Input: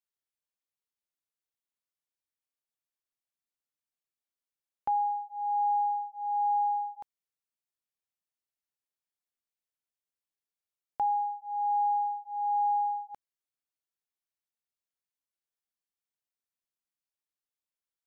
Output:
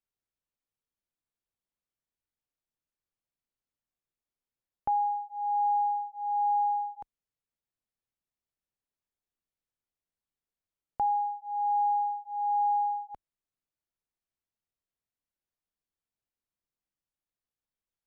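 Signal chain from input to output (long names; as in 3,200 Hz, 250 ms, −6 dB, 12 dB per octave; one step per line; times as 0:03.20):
spectral tilt −2.5 dB per octave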